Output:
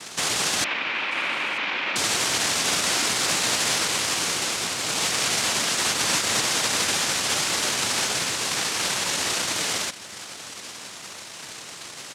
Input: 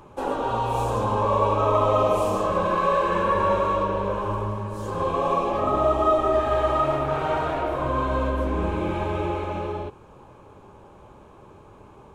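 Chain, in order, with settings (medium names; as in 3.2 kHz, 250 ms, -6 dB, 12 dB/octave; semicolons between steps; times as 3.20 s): in parallel at +2 dB: compression, threshold -36 dBFS, peak gain reduction 19 dB; on the sum: peak limiter -15 dBFS, peak gain reduction 7.5 dB; saturation -22.5 dBFS, distortion -13 dB; noise-vocoded speech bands 1; 0.64–1.96 s: cabinet simulation 310–3000 Hz, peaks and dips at 450 Hz -7 dB, 700 Hz -5 dB, 2.4 kHz +7 dB; on a send: delay 937 ms -23 dB; on the sum: trim +3 dB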